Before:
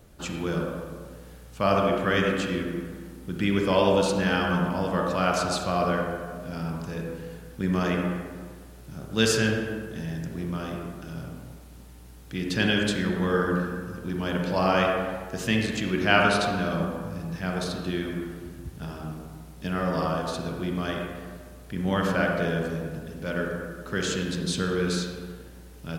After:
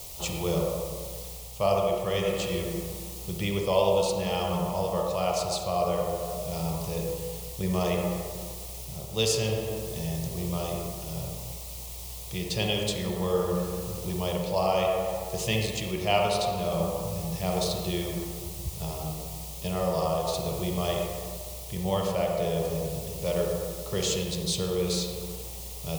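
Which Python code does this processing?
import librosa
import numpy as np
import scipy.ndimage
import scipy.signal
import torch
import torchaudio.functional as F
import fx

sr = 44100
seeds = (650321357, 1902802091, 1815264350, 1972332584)

p1 = fx.quant_dither(x, sr, seeds[0], bits=6, dither='triangular')
p2 = x + (p1 * 10.0 ** (-8.5 / 20.0))
p3 = fx.fixed_phaser(p2, sr, hz=640.0, stages=4)
y = fx.rider(p3, sr, range_db=3, speed_s=0.5)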